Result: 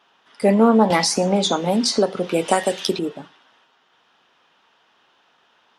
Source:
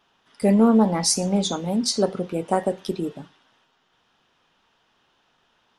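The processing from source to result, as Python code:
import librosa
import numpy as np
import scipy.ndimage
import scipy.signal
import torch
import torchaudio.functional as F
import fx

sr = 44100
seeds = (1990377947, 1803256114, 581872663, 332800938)

y = fx.highpass(x, sr, hz=460.0, slope=6)
y = fx.high_shelf(y, sr, hz=5900.0, db=-9.5)
y = fx.band_squash(y, sr, depth_pct=100, at=(0.9, 2.99))
y = y * 10.0 ** (7.5 / 20.0)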